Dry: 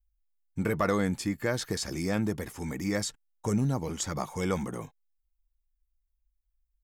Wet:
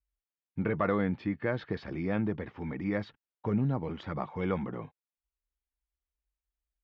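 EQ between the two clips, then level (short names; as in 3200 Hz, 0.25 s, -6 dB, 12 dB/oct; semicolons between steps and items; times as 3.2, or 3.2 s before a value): HPF 76 Hz 12 dB/oct; LPF 3500 Hz 24 dB/oct; air absorption 190 m; -1.0 dB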